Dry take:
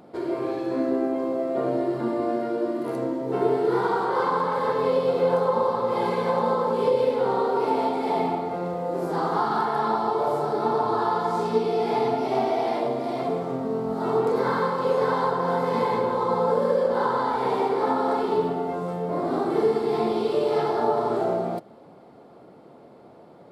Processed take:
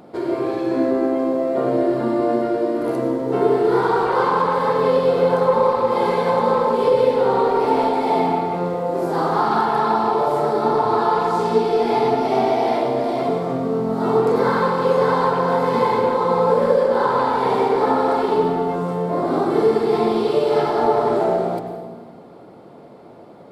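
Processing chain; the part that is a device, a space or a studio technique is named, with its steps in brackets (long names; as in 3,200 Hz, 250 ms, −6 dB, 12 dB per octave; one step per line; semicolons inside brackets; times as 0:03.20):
saturated reverb return (on a send at −6.5 dB: convolution reverb RT60 1.4 s, pre-delay 87 ms + soft clipping −18.5 dBFS, distortion −15 dB)
on the sum: level +5 dB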